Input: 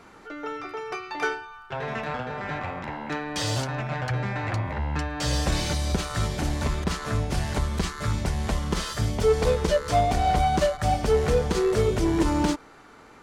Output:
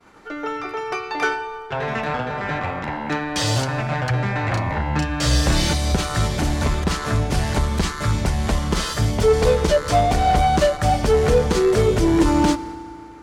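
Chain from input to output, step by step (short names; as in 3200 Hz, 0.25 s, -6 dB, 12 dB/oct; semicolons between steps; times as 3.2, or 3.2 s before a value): 4.48–5.73 doubler 33 ms -4 dB; in parallel at -3 dB: soft clip -20.5 dBFS, distortion -12 dB; on the sum: expander -39 dBFS; FDN reverb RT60 2.8 s, high-frequency decay 0.65×, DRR 15.5 dB; gain +2 dB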